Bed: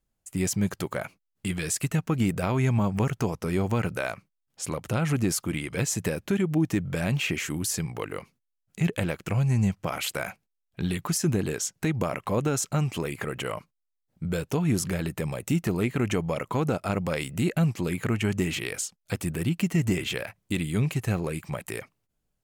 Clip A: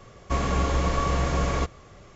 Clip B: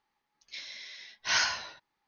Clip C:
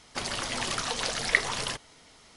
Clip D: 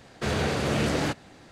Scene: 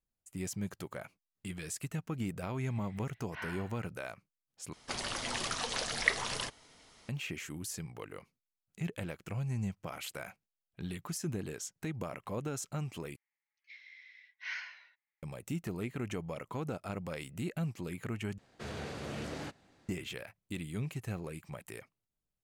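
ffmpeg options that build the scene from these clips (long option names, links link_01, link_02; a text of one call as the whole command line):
ffmpeg -i bed.wav -i cue0.wav -i cue1.wav -i cue2.wav -i cue3.wav -filter_complex "[2:a]asplit=2[link_01][link_02];[0:a]volume=-12dB[link_03];[link_01]lowpass=frequency=2500:width=0.5412,lowpass=frequency=2500:width=1.3066[link_04];[link_02]bandpass=frequency=2100:width_type=q:width=5:csg=0[link_05];[link_03]asplit=4[link_06][link_07][link_08][link_09];[link_06]atrim=end=4.734[link_10];[3:a]atrim=end=2.36,asetpts=PTS-STARTPTS,volume=-5dB[link_11];[link_07]atrim=start=7.086:end=13.164[link_12];[link_05]atrim=end=2.07,asetpts=PTS-STARTPTS,volume=-4.5dB[link_13];[link_08]atrim=start=15.226:end=18.384[link_14];[4:a]atrim=end=1.51,asetpts=PTS-STARTPTS,volume=-15dB[link_15];[link_09]atrim=start=19.886[link_16];[link_04]atrim=end=2.07,asetpts=PTS-STARTPTS,volume=-13dB,afade=type=in:duration=0.004:curve=hsin,afade=type=out:start_time=2.066:duration=0.004:curve=hsin,adelay=2070[link_17];[link_10][link_11]acrossfade=duration=0.004:curve1=hsin:curve2=hsin[link_18];[link_18][link_12]acrossfade=duration=0.004:curve1=hsin:curve2=hsin[link_19];[link_19][link_13]acrossfade=duration=0.004:curve1=hsin:curve2=hsin[link_20];[link_20][link_14]acrossfade=duration=0.004:curve1=hsin:curve2=hsin[link_21];[link_21][link_15]acrossfade=duration=0.004:curve1=hsin:curve2=hsin[link_22];[link_22][link_16]acrossfade=duration=0.004:curve1=hsin:curve2=hsin[link_23];[link_23][link_17]amix=inputs=2:normalize=0" out.wav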